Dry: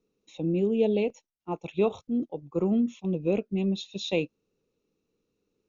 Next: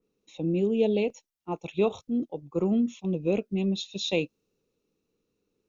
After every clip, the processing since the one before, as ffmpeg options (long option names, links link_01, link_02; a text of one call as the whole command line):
ffmpeg -i in.wav -af "adynamicequalizer=threshold=0.00501:dfrequency=3100:dqfactor=0.7:tfrequency=3100:tqfactor=0.7:attack=5:release=100:ratio=0.375:range=2.5:mode=boostabove:tftype=highshelf" out.wav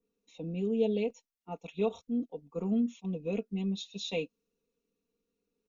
ffmpeg -i in.wav -af "aecho=1:1:4.3:0.82,volume=-9dB" out.wav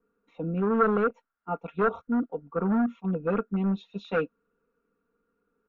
ffmpeg -i in.wav -af "asoftclip=type=hard:threshold=-28dB,lowpass=frequency=1400:width_type=q:width=7.9,volume=6.5dB" out.wav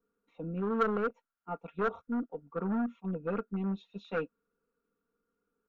ffmpeg -i in.wav -af "aeval=exprs='0.299*(cos(1*acos(clip(val(0)/0.299,-1,1)))-cos(1*PI/2))+0.0266*(cos(3*acos(clip(val(0)/0.299,-1,1)))-cos(3*PI/2))+0.00376*(cos(8*acos(clip(val(0)/0.299,-1,1)))-cos(8*PI/2))':channel_layout=same,volume=-4.5dB" out.wav